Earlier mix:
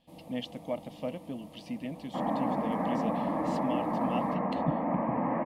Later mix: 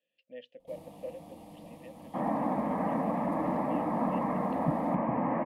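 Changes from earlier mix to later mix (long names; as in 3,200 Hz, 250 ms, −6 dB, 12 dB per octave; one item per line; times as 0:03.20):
speech: add formant filter e
first sound: entry +0.60 s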